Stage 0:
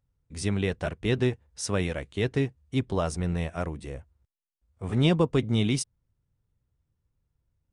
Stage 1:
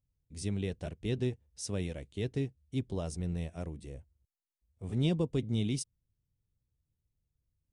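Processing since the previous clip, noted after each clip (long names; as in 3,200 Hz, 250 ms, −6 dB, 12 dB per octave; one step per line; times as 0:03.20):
parametric band 1,300 Hz −12.5 dB 1.8 octaves
level −6 dB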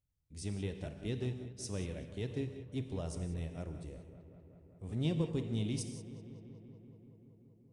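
in parallel at −7 dB: asymmetric clip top −30 dBFS
on the sum: feedback echo with a low-pass in the loop 191 ms, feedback 80%, low-pass 3,600 Hz, level −14 dB
reverb whose tail is shaped and stops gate 200 ms flat, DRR 7.5 dB
level −7.5 dB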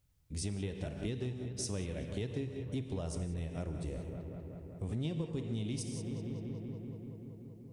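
downward compressor 5 to 1, threshold −47 dBFS, peak gain reduction 16.5 dB
level +11.5 dB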